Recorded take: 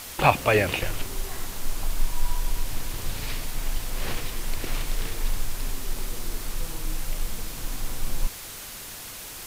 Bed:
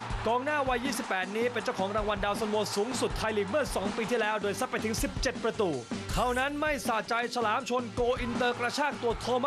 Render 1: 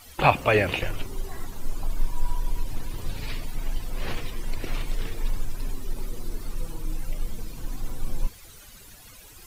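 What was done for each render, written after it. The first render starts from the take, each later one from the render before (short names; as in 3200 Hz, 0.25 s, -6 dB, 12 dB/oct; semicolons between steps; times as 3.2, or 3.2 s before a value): denoiser 14 dB, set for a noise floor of -39 dBFS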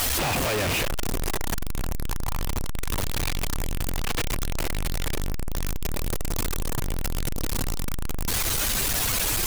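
infinite clipping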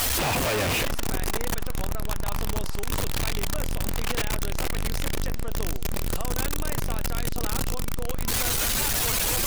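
add bed -9.5 dB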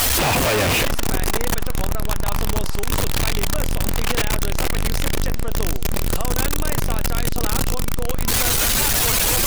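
gain +6.5 dB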